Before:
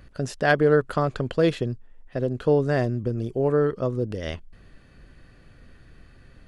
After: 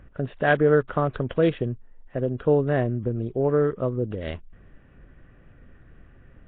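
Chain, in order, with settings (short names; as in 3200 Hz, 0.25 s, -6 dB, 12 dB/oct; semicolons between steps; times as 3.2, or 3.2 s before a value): Wiener smoothing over 9 samples; Nellymoser 16 kbps 8000 Hz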